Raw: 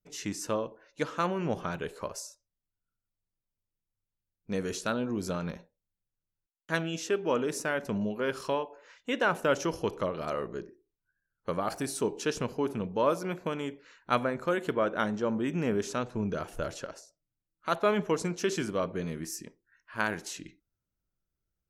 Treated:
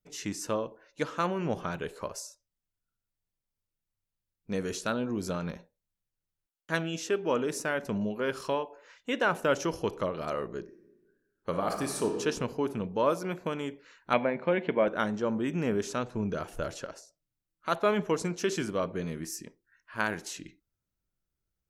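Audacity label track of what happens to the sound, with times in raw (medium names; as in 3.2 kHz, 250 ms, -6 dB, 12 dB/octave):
10.640000	12.140000	reverb throw, RT60 1.4 s, DRR 4.5 dB
14.130000	14.880000	cabinet simulation 150–3500 Hz, peaks and dips at 190 Hz +8 dB, 580 Hz +4 dB, 840 Hz +5 dB, 1.3 kHz -8 dB, 2.2 kHz +8 dB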